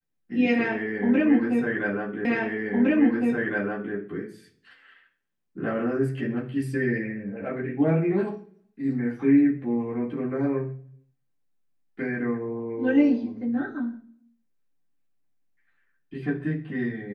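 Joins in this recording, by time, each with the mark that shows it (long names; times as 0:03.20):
0:02.25: the same again, the last 1.71 s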